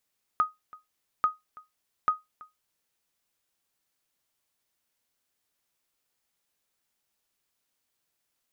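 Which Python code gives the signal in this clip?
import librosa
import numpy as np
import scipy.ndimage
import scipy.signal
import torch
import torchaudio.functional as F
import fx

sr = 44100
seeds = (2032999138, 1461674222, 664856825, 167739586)

y = fx.sonar_ping(sr, hz=1250.0, decay_s=0.18, every_s=0.84, pings=3, echo_s=0.33, echo_db=-23.0, level_db=-15.0)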